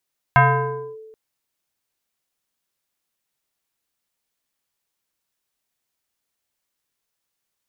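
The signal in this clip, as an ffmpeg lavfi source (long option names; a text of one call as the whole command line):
ffmpeg -f lavfi -i "aevalsrc='0.398*pow(10,-3*t/1.33)*sin(2*PI*439*t+2.4*clip(1-t/0.61,0,1)*sin(2*PI*1.3*439*t))':duration=0.78:sample_rate=44100" out.wav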